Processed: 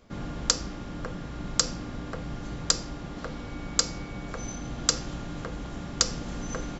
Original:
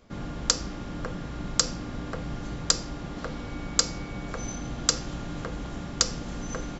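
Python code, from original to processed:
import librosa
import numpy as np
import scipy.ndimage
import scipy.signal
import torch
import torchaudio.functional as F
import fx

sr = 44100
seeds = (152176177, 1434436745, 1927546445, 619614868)

y = fx.rider(x, sr, range_db=4, speed_s=2.0)
y = y * librosa.db_to_amplitude(-2.5)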